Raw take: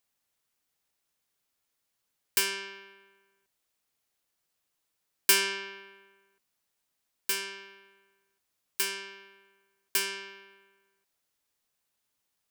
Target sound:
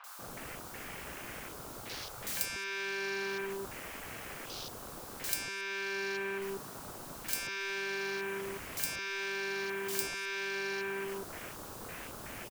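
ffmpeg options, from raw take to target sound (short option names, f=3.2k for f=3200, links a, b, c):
-filter_complex "[0:a]aeval=exprs='val(0)+0.5*0.0237*sgn(val(0))':c=same,afwtdn=0.00631,acompressor=threshold=-38dB:ratio=16,acrossover=split=960|2900[a][b][c];[c]adelay=40[d];[a]adelay=190[e];[e][b][d]amix=inputs=3:normalize=0,volume=6dB"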